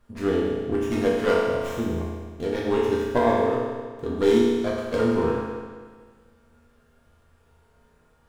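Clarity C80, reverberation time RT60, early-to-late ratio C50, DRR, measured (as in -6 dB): 1.5 dB, 1.6 s, -0.5 dB, -5.5 dB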